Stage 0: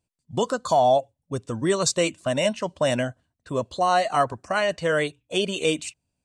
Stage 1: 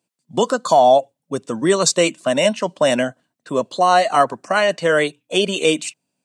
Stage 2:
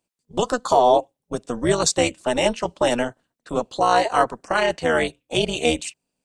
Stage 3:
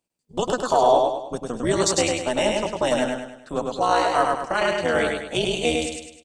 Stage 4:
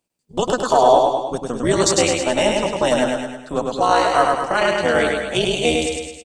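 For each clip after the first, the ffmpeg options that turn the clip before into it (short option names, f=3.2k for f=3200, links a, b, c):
-af "highpass=f=170:w=0.5412,highpass=f=170:w=1.3066,volume=6.5dB"
-af "tremolo=f=240:d=0.824"
-af "aecho=1:1:102|204|306|408|510|612:0.708|0.304|0.131|0.0563|0.0242|0.0104,volume=-3dB"
-af "aecho=1:1:219:0.299,volume=4dB"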